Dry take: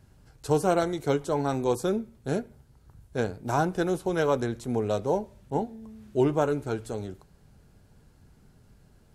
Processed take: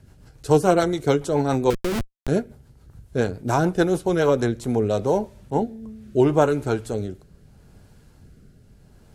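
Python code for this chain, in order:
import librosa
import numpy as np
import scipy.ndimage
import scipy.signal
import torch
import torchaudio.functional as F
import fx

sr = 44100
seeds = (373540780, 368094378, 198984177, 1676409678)

y = fx.schmitt(x, sr, flips_db=-28.5, at=(1.7, 2.28))
y = fx.rotary_switch(y, sr, hz=7.0, then_hz=0.75, switch_at_s=4.11)
y = F.gain(torch.from_numpy(y), 8.0).numpy()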